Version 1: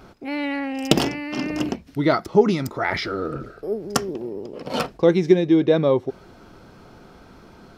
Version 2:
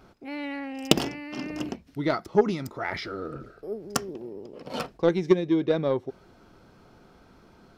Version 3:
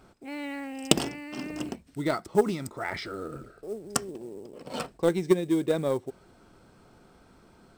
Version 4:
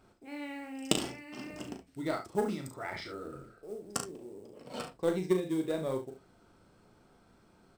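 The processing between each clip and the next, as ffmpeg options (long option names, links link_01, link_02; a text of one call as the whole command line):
ffmpeg -i in.wav -af "aeval=exprs='0.891*(cos(1*acos(clip(val(0)/0.891,-1,1)))-cos(1*PI/2))+0.158*(cos(3*acos(clip(val(0)/0.891,-1,1)))-cos(3*PI/2))':channel_layout=same,volume=-1.5dB" out.wav
ffmpeg -i in.wav -af "acrusher=bits=7:mode=log:mix=0:aa=0.000001,equalizer=frequency=8200:width_type=o:width=0.21:gain=14,volume=-2dB" out.wav
ffmpeg -i in.wav -filter_complex "[0:a]flanger=delay=8.3:depth=2.9:regen=-69:speed=0.84:shape=triangular,asplit=2[link_01][link_02];[link_02]aecho=0:1:38|71:0.473|0.282[link_03];[link_01][link_03]amix=inputs=2:normalize=0,volume=-3dB" out.wav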